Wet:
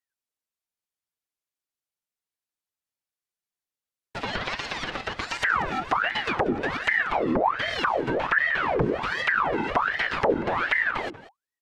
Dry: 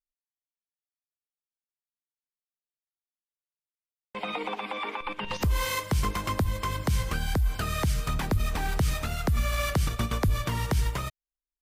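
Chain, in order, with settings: minimum comb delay 5.6 ms; treble ducked by the level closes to 1100 Hz, closed at -24 dBFS; echo 0.187 s -15.5 dB; ring modulator with a swept carrier 1100 Hz, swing 75%, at 1.3 Hz; gain +7 dB

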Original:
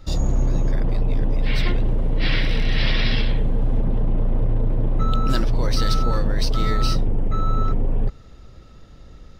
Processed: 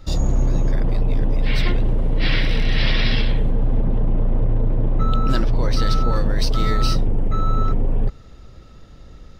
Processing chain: 3.51–6.16 high shelf 5500 Hz -8.5 dB; gain +1.5 dB

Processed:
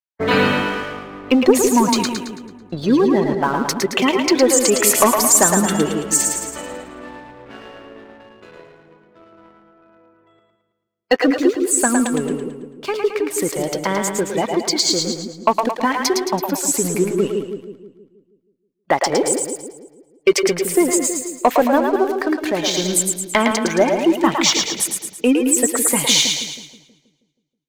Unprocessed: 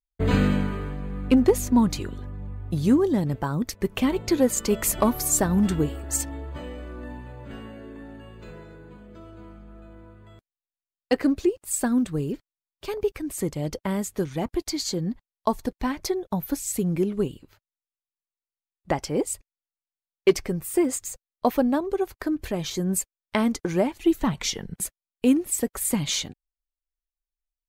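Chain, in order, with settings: weighting filter A; spectral gate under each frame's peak -25 dB strong; sample leveller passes 2; split-band echo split 440 Hz, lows 0.16 s, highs 0.11 s, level -4 dB; mismatched tape noise reduction decoder only; gain +4 dB

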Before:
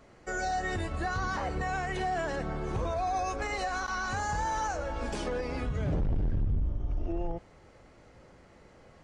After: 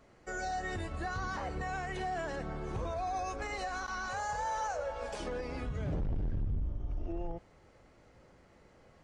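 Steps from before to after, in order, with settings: 4.09–5.2 resonant low shelf 410 Hz -7 dB, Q 3; gain -5 dB

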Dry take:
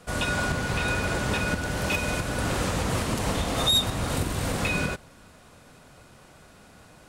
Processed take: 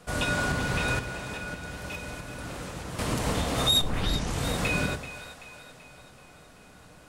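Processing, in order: 0.99–2.99 resonator 170 Hz, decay 1.7 s, mix 70%; 3.81 tape start 0.64 s; split-band echo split 530 Hz, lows 0.111 s, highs 0.383 s, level -12.5 dB; reverb RT60 0.35 s, pre-delay 7 ms, DRR 12 dB; gain -1.5 dB

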